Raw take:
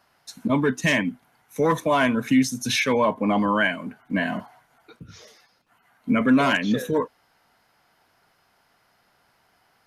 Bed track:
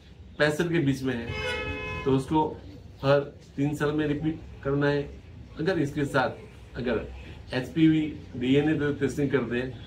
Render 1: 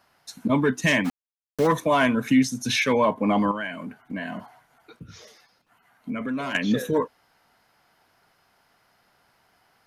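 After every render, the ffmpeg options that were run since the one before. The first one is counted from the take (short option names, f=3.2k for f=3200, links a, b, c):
-filter_complex "[0:a]asplit=3[a][b][c];[a]afade=t=out:st=1.04:d=0.02[d];[b]aeval=exprs='val(0)*gte(abs(val(0)),0.0398)':c=same,afade=t=in:st=1.04:d=0.02,afade=t=out:st=1.66:d=0.02[e];[c]afade=t=in:st=1.66:d=0.02[f];[d][e][f]amix=inputs=3:normalize=0,asettb=1/sr,asplit=3[g][h][i];[g]atrim=end=2.324[j];[h]atrim=start=2.32:end=2.82,asetpts=PTS-STARTPTS,afade=t=in:d=0.004:c=qsin,afade=t=out:st=0.496:d=0.004:c=qsin,highshelf=f=10k:g=-8[k];[i]atrim=start=2.816[l];[j][k]acrossfade=d=0.004:c1=hsin:c2=qsin[m];[m][l]acrossfade=d=0.004:c1=qsin:c2=hsin,asettb=1/sr,asplit=3[n][o][p];[n]atrim=end=3.514[q];[o]atrim=start=3.51:end=6.55,asetpts=PTS-STARTPTS,afade=t=in:d=0.004:c=qsin,afade=t=out:st=3.036:d=0.004:c=qsin,acompressor=threshold=-31dB:ratio=2.5:attack=3.2:release=140:knee=1:detection=peak[r];[p]atrim=start=6.546[s];[q][r]acrossfade=d=0.004:c1=hsin:c2=qsin[t];[t][s]acrossfade=d=0.004:c1=qsin:c2=hsin"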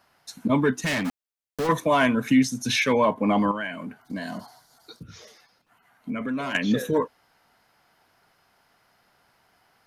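-filter_complex "[0:a]asettb=1/sr,asplit=3[a][b][c];[a]atrim=end=0.804[d];[b]atrim=start=0.8:end=1.69,asetpts=PTS-STARTPTS,afade=t=in:d=0.004:c=qsin,afade=t=out:st=0.886:d=0.004:c=qsin,asoftclip=type=hard:threshold=-23dB[e];[c]atrim=start=1.686[f];[d][e]acrossfade=d=0.004:c1=hsin:c2=qsin[g];[g][f]acrossfade=d=0.004:c1=qsin:c2=hsin,asettb=1/sr,asplit=3[h][i][j];[h]atrim=end=4.014[k];[i]atrim=start=4.01:end=5.03,asetpts=PTS-STARTPTS,afade=t=in:d=0.004:c=qsin,afade=t=out:st=1.016:d=0.004:c=qsin,highshelf=f=3.4k:t=q:w=3:g=9.5[l];[j]atrim=start=5.026[m];[k][l]acrossfade=d=0.004:c1=hsin:c2=qsin[n];[n][m]acrossfade=d=0.004:c1=qsin:c2=hsin"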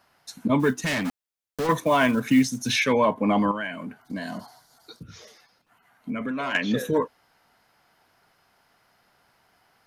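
-filter_complex "[0:a]asplit=3[a][b][c];[a]afade=t=out:st=0.59:d=0.02[d];[b]acrusher=bits=7:mode=log:mix=0:aa=0.000001,afade=t=in:st=0.59:d=0.02,afade=t=out:st=2.72:d=0.02[e];[c]afade=t=in:st=2.72:d=0.02[f];[d][e][f]amix=inputs=3:normalize=0,asettb=1/sr,asplit=3[g][h][i];[g]atrim=end=6.314[j];[h]atrim=start=6.31:end=6.74,asetpts=PTS-STARTPTS,afade=t=in:d=0.004:c=qsin,afade=t=out:st=0.426:d=0.004:c=qsin,asplit=2[k][l];[l]highpass=f=720:p=1,volume=8dB,asoftclip=type=tanh:threshold=-10dB[m];[k][m]amix=inputs=2:normalize=0,lowpass=f=2.9k:p=1,volume=-6dB[n];[i]atrim=start=6.736[o];[j][n]acrossfade=d=0.004:c1=hsin:c2=qsin[p];[p][o]acrossfade=d=0.004:c1=qsin:c2=hsin"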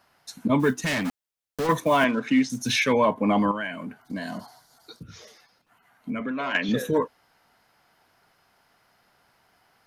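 -filter_complex "[0:a]asettb=1/sr,asplit=3[a][b][c];[a]atrim=end=2.044[d];[b]atrim=start=2.04:end=2.5,asetpts=PTS-STARTPTS,afade=t=in:d=0.004:c=qsin,afade=t=out:st=0.456:d=0.004:c=qsin,highpass=230,lowpass=4.4k[e];[c]atrim=start=2.496[f];[d][e]acrossfade=d=0.004:c1=hsin:c2=qsin[g];[g][f]acrossfade=d=0.004:c1=qsin:c2=hsin,asettb=1/sr,asplit=3[h][i][j];[h]atrim=end=6.204[k];[i]atrim=start=6.2:end=6.69,asetpts=PTS-STARTPTS,afade=t=in:d=0.004:c=qsin,afade=t=out:st=0.486:d=0.004:c=qsin,highpass=150,lowpass=5.4k[l];[j]atrim=start=6.686[m];[k][l]acrossfade=d=0.004:c1=hsin:c2=qsin[n];[n][m]acrossfade=d=0.004:c1=qsin:c2=hsin"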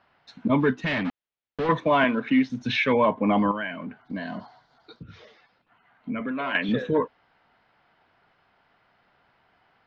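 -af "lowpass=f=3.6k:w=0.5412,lowpass=f=3.6k:w=1.3066"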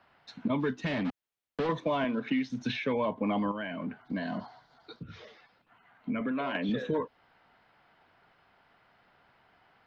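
-filter_complex "[0:a]acrossover=split=120|860|3500[a][b][c][d];[a]acompressor=threshold=-50dB:ratio=4[e];[b]acompressor=threshold=-29dB:ratio=4[f];[c]acompressor=threshold=-41dB:ratio=4[g];[d]acompressor=threshold=-45dB:ratio=4[h];[e][f][g][h]amix=inputs=4:normalize=0"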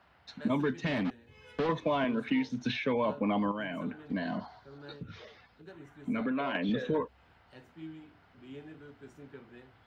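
-filter_complex "[1:a]volume=-24.5dB[a];[0:a][a]amix=inputs=2:normalize=0"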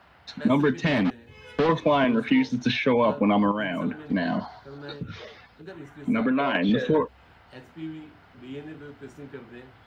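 -af "volume=8.5dB"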